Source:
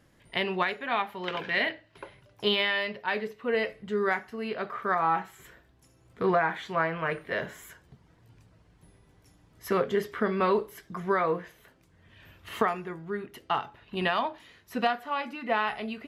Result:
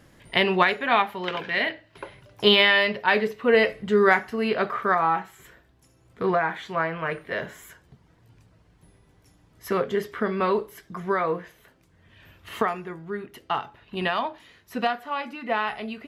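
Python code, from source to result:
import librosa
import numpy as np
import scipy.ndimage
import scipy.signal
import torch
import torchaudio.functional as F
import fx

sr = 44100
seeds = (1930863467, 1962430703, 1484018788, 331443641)

y = fx.gain(x, sr, db=fx.line((0.96, 8.0), (1.48, 1.5), (2.57, 9.0), (4.63, 9.0), (5.21, 1.5)))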